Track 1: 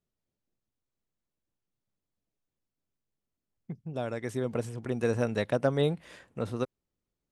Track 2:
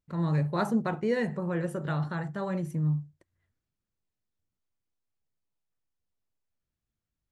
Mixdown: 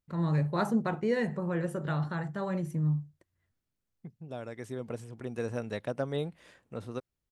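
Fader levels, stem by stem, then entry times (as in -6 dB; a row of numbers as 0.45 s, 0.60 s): -6.5 dB, -1.0 dB; 0.35 s, 0.00 s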